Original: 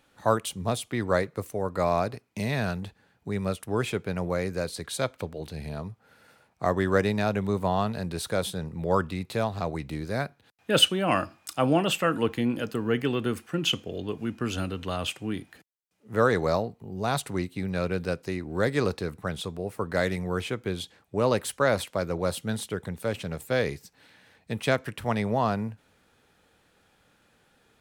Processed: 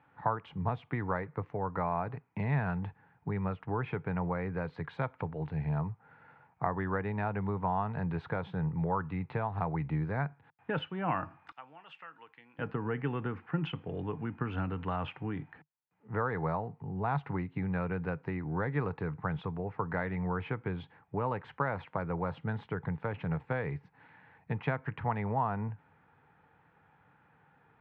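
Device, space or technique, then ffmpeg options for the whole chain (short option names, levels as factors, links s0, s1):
bass amplifier: -filter_complex "[0:a]acompressor=threshold=0.0398:ratio=4,highpass=84,equalizer=f=98:t=q:w=4:g=3,equalizer=f=150:t=q:w=4:g=8,equalizer=f=220:t=q:w=4:g=-6,equalizer=f=360:t=q:w=4:g=-6,equalizer=f=580:t=q:w=4:g=-8,equalizer=f=890:t=q:w=4:g=8,lowpass=f=2100:w=0.5412,lowpass=f=2100:w=1.3066,asettb=1/sr,asplit=3[s0][s1][s2];[s0]atrim=end=11.524[s3];[s1]atrim=start=11.52:end=12.59,asetpts=PTS-STARTPTS,afade=t=in:d=0.004:c=qsin,afade=t=out:st=1.066:d=0.004:c=qsin,aderivative[s4];[s2]atrim=start=12.586[s5];[s3][s4]acrossfade=d=0.004:c1=hsin:c2=qsin[s6];[s6][s5]acrossfade=d=0.004:c1=qsin:c2=hsin"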